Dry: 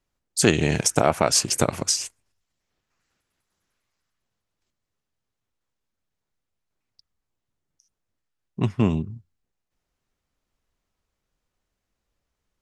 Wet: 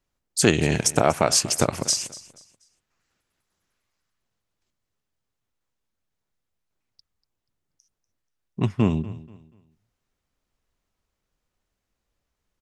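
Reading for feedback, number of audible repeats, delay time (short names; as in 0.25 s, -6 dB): 31%, 2, 0.241 s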